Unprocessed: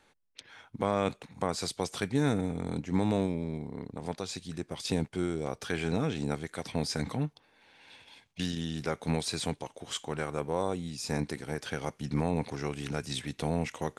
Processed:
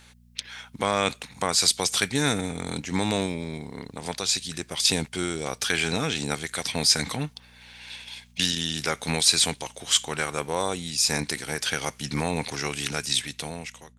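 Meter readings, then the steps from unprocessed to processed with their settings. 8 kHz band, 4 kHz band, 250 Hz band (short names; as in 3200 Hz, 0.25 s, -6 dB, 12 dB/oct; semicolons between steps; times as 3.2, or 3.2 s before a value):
+16.5 dB, +15.0 dB, +1.0 dB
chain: ending faded out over 1.16 s; tilt shelf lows -8.5 dB, about 1400 Hz; buzz 60 Hz, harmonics 4, -65 dBFS -4 dB/oct; gain +9 dB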